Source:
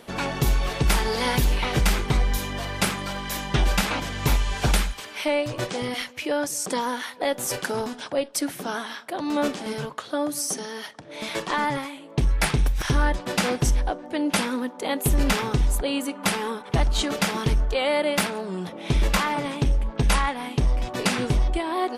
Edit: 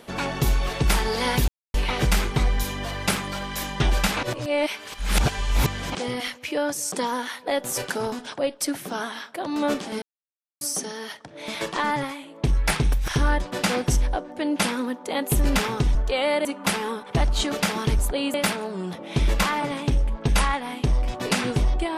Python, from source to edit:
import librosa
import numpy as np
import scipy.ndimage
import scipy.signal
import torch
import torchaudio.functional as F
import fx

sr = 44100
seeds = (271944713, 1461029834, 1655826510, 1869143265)

y = fx.edit(x, sr, fx.insert_silence(at_s=1.48, length_s=0.26),
    fx.reverse_span(start_s=3.97, length_s=1.72),
    fx.silence(start_s=9.76, length_s=0.59),
    fx.swap(start_s=15.69, length_s=0.35, other_s=17.58, other_length_s=0.5), tone=tone)